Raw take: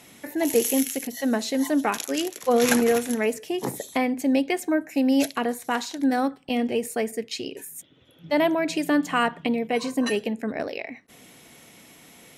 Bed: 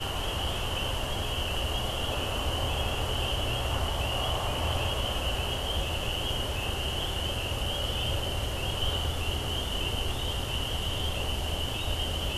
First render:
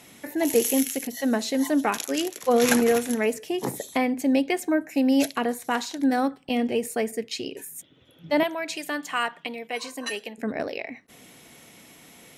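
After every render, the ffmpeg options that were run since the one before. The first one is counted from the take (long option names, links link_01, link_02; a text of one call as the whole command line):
ffmpeg -i in.wav -filter_complex "[0:a]asettb=1/sr,asplit=3[link_01][link_02][link_03];[link_01]atrim=end=8.434[link_04];[link_02]atrim=start=8.43:end=10.38,asetpts=PTS-STARTPTS,afade=type=in:duration=0.004:curve=qsin,afade=type=out:start_time=1.946:duration=0.004:curve=qsin,highpass=frequency=1200:poles=1[link_05];[link_03]atrim=start=10.376[link_06];[link_04][link_05]acrossfade=duration=0.004:curve1=hsin:curve2=qsin[link_07];[link_07][link_06]acrossfade=duration=0.004:curve1=qsin:curve2=hsin" out.wav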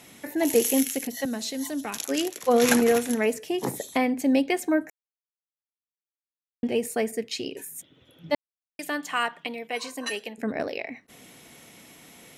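ffmpeg -i in.wav -filter_complex "[0:a]asettb=1/sr,asplit=3[link_01][link_02][link_03];[link_01]atrim=end=1.254[link_04];[link_02]atrim=start=1.25:end=2.05,asetpts=PTS-STARTPTS,afade=type=in:duration=0.004:curve=qsin,afade=type=out:start_time=0.796:duration=0.004:curve=qsin,acrossover=split=170|3000[link_05][link_06][link_07];[link_06]acompressor=threshold=-49dB:ratio=1.5:attack=3.2:release=140:knee=2.83:detection=peak[link_08];[link_05][link_08][link_07]amix=inputs=3:normalize=0[link_09];[link_03]atrim=start=2.046[link_10];[link_04][link_09]acrossfade=duration=0.004:curve1=hsin:curve2=qsin[link_11];[link_11][link_10]acrossfade=duration=0.004:curve1=qsin:curve2=hsin,asplit=5[link_12][link_13][link_14][link_15][link_16];[link_12]atrim=end=4.9,asetpts=PTS-STARTPTS,afade=type=out:start_time=4.896:duration=0.004:curve=hsin[link_17];[link_13]atrim=start=4.9:end=6.63,asetpts=PTS-STARTPTS,volume=0[link_18];[link_14]atrim=start=6.63:end=8.35,asetpts=PTS-STARTPTS,afade=type=in:duration=0.004:curve=hsin,afade=type=out:start_time=1.716:duration=0.004:curve=hsin[link_19];[link_15]atrim=start=8.35:end=8.79,asetpts=PTS-STARTPTS,volume=0[link_20];[link_16]atrim=start=8.79,asetpts=PTS-STARTPTS,afade=type=in:duration=0.004:curve=hsin[link_21];[link_17][link_18][link_19][link_20][link_21]concat=n=5:v=0:a=1" out.wav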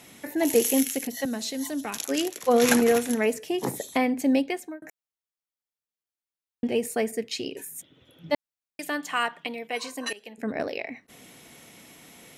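ffmpeg -i in.wav -filter_complex "[0:a]asplit=3[link_01][link_02][link_03];[link_01]atrim=end=4.82,asetpts=PTS-STARTPTS,afade=type=out:start_time=4.31:duration=0.51[link_04];[link_02]atrim=start=4.82:end=10.13,asetpts=PTS-STARTPTS,afade=type=in:duration=0.004:curve=hsin,afade=type=out:start_time=5.306:duration=0.004:curve=hsin:silence=0.112202[link_05];[link_03]atrim=start=10.13,asetpts=PTS-STARTPTS,afade=type=in:duration=0.54:curve=qsin:silence=0.112202[link_06];[link_04][link_05][link_06]concat=n=3:v=0:a=1" out.wav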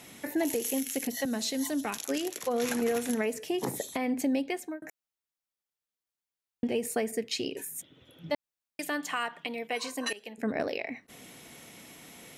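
ffmpeg -i in.wav -af "acompressor=threshold=-24dB:ratio=6,alimiter=limit=-19.5dB:level=0:latency=1:release=142" out.wav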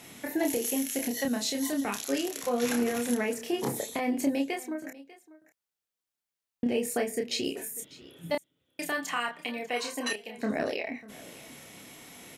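ffmpeg -i in.wav -filter_complex "[0:a]asplit=2[link_01][link_02];[link_02]adelay=29,volume=-4dB[link_03];[link_01][link_03]amix=inputs=2:normalize=0,aecho=1:1:595:0.106" out.wav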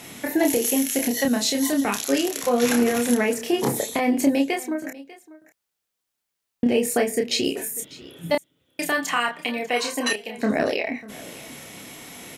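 ffmpeg -i in.wav -af "volume=8dB" out.wav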